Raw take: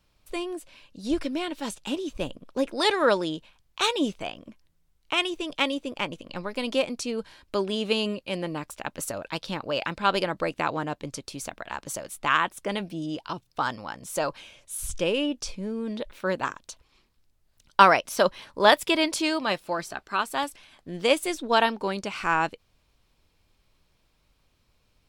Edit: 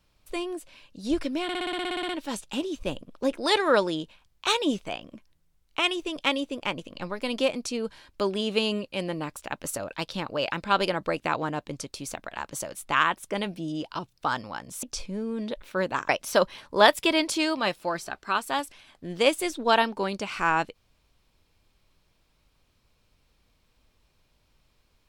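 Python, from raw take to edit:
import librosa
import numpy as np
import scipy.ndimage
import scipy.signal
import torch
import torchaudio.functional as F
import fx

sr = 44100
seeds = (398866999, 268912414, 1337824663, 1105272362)

y = fx.edit(x, sr, fx.stutter(start_s=1.43, slice_s=0.06, count=12),
    fx.cut(start_s=14.17, length_s=1.15),
    fx.cut(start_s=16.58, length_s=1.35), tone=tone)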